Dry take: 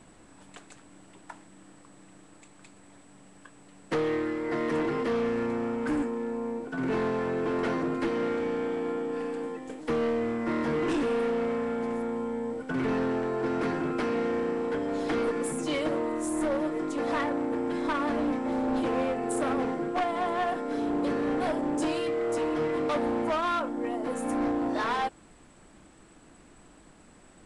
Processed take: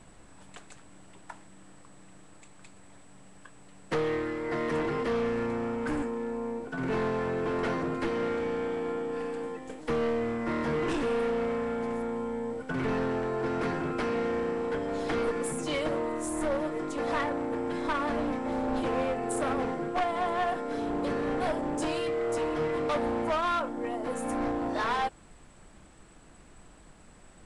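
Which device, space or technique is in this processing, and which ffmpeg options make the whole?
low shelf boost with a cut just above: -af "lowshelf=f=91:g=6.5,equalizer=f=290:t=o:w=0.72:g=-5"

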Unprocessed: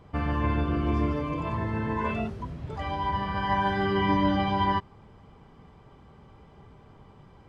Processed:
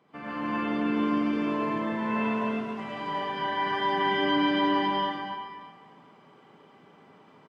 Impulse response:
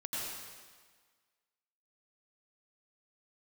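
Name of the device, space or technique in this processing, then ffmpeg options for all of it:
stadium PA: -filter_complex "[0:a]highpass=f=180:w=0.5412,highpass=f=180:w=1.3066,equalizer=f=2.2k:t=o:w=1.4:g=4.5,aecho=1:1:227.4|268.2:0.355|0.794[a];[1:a]atrim=start_sample=2205[b];[a][b]afir=irnorm=-1:irlink=0,volume=-5.5dB"

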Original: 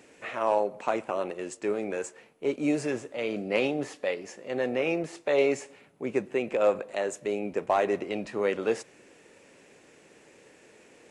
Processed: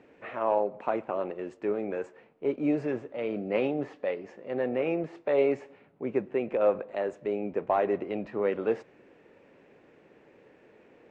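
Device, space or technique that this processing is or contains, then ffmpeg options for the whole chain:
phone in a pocket: -af "lowpass=3.5k,highshelf=f=2.4k:g=-12"

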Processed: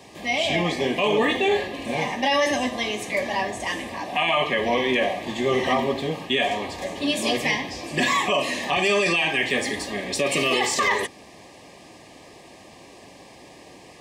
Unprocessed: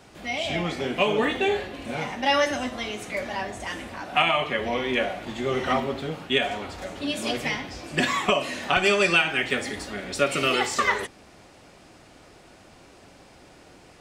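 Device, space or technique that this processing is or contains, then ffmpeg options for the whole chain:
PA system with an anti-feedback notch: -af "highpass=f=150:p=1,asuperstop=centerf=1400:order=20:qfactor=4.1,alimiter=limit=-18dB:level=0:latency=1:release=11,volume=5.5dB"

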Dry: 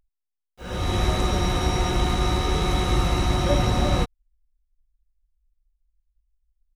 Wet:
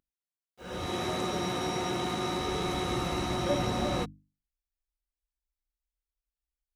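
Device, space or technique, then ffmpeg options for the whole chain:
filter by subtraction: -filter_complex "[0:a]bandreject=f=50:t=h:w=6,bandreject=f=100:t=h:w=6,bandreject=f=150:t=h:w=6,bandreject=f=200:t=h:w=6,bandreject=f=250:t=h:w=6,bandreject=f=300:t=h:w=6,asplit=2[a][b];[b]lowpass=250,volume=-1[c];[a][c]amix=inputs=2:normalize=0,asettb=1/sr,asplit=3[d][e][f];[d]atrim=end=0.864[g];[e]atrim=start=0.86:end=2.4,asetpts=PTS-STARTPTS,afade=t=in:d=0.004:c=qsin,afade=t=out:st=1.536:d=0.004:c=qsin,highpass=110[h];[f]atrim=start=2.396[i];[g][h]acrossfade=d=0.004:c1=hsin:c2=qsin[j];[j][i]acrossfade=d=0.004:c1=qsin:c2=hsin,volume=-6.5dB"

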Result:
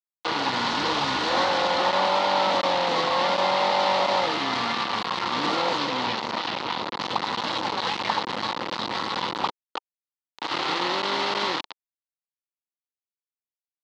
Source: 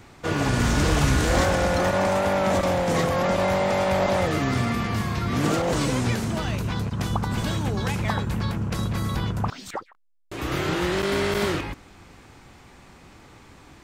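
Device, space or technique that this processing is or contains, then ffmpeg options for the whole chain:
hand-held game console: -filter_complex "[0:a]acrusher=bits=3:mix=0:aa=0.000001,highpass=400,equalizer=f=410:t=q:w=4:g=-6,equalizer=f=640:t=q:w=4:g=-6,equalizer=f=920:t=q:w=4:g=6,equalizer=f=1.6k:t=q:w=4:g=-6,equalizer=f=2.4k:t=q:w=4:g=-5,equalizer=f=4.2k:t=q:w=4:g=4,lowpass=f=4.3k:w=0.5412,lowpass=f=4.3k:w=1.3066,asettb=1/sr,asplit=3[a][b][c];[a]atrim=end=5.774[d];[b]atrim=start=5.77:end=6.97,asetpts=PTS-STARTPTS,afade=t=in:d=0.004:c=qsin,afade=t=out:st=1.196:d=0.004:c=qsin,lowpass=6.6k[e];[c]atrim=start=6.966[f];[d][e]acrossfade=d=0.004:c1=hsin:c2=qsin[g];[g][f]acrossfade=d=0.004:c1=qsin:c2=hsin,volume=1.5dB"

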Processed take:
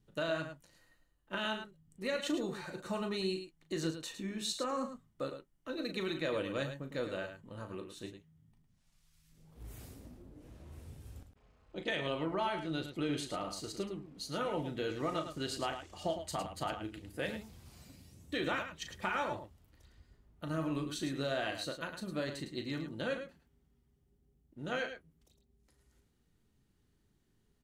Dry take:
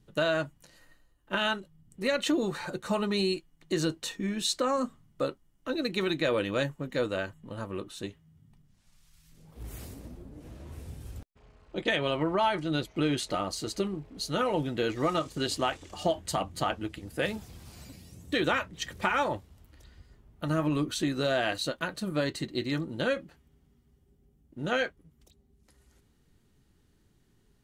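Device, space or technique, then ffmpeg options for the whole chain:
slapback doubling: -filter_complex "[0:a]asplit=3[a][b][c];[b]adelay=37,volume=-9dB[d];[c]adelay=107,volume=-9dB[e];[a][d][e]amix=inputs=3:normalize=0,volume=-8.5dB"

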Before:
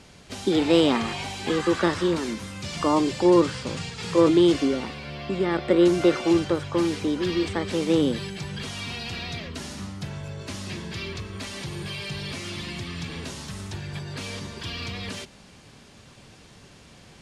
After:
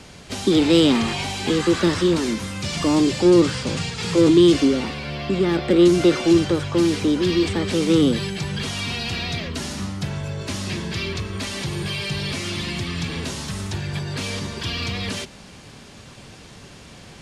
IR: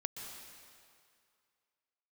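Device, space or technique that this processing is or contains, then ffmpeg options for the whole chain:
one-band saturation: -filter_complex "[0:a]acrossover=split=400|2500[a][b][c];[b]asoftclip=type=tanh:threshold=-34.5dB[d];[a][d][c]amix=inputs=3:normalize=0,volume=7dB"

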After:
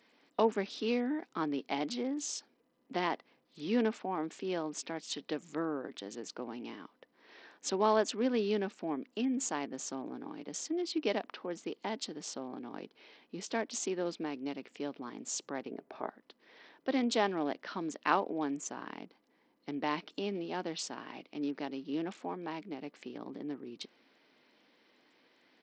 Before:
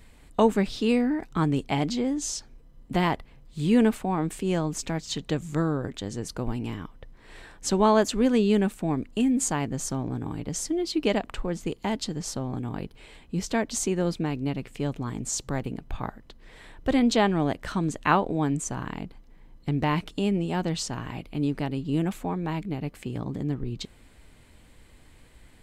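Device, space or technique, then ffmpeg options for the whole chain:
Bluetooth headset: -filter_complex "[0:a]asettb=1/sr,asplit=3[a][b][c];[a]atrim=end=15.684[d];[b]atrim=start=15.68:end=16.08,asetpts=PTS-STARTPTS,afade=t=in:d=0.004:c=qsin,afade=t=out:st=0.396:d=0.004:c=qsin,equalizer=f=400:t=o:w=0.33:g=9,equalizer=f=630:t=o:w=0.33:g=9,equalizer=f=3.15k:t=o:w=0.33:g=-11,equalizer=f=5k:t=o:w=0.33:g=-10[e];[c]atrim=start=16.076[f];[d][e]acrossfade=d=0.004:c1=hsin:c2=qsin[g];[g][f]acrossfade=d=0.004:c1=qsin:c2=hsin,highpass=f=250:w=0.5412,highpass=f=250:w=1.3066,aresample=16000,aresample=44100,volume=-7dB" -ar 44100 -c:a sbc -b:a 64k

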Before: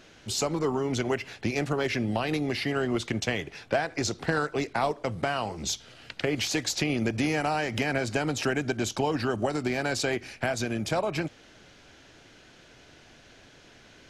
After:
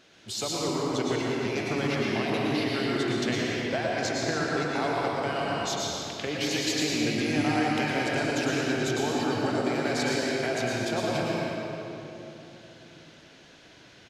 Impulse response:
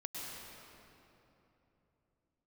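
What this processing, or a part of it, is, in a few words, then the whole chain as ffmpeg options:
PA in a hall: -filter_complex "[0:a]highpass=f=130:p=1,equalizer=f=3.8k:t=o:w=0.71:g=3.5,aecho=1:1:117:0.398[a];[1:a]atrim=start_sample=2205[b];[a][b]afir=irnorm=-1:irlink=0"

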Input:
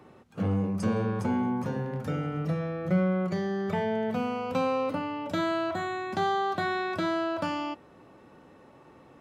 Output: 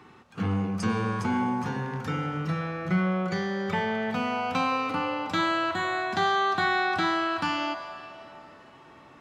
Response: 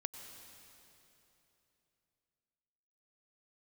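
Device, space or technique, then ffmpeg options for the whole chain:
filtered reverb send: -filter_complex "[0:a]asplit=2[a][b];[b]highpass=f=590:w=0.5412,highpass=f=590:w=1.3066,lowpass=7.8k[c];[1:a]atrim=start_sample=2205[d];[c][d]afir=irnorm=-1:irlink=0,volume=5dB[e];[a][e]amix=inputs=2:normalize=0"

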